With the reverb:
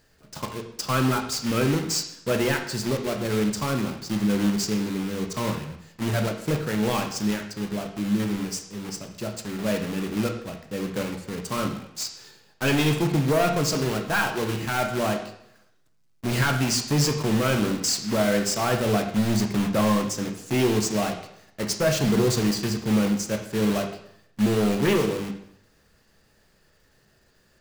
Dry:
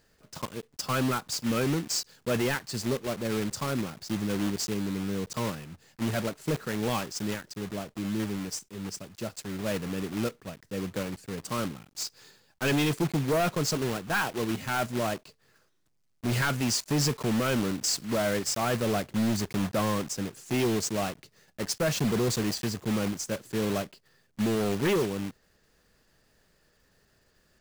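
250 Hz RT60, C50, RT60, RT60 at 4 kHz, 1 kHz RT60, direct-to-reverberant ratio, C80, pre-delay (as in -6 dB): 0.80 s, 7.5 dB, 0.70 s, 0.65 s, 0.75 s, 4.0 dB, 10.5 dB, 6 ms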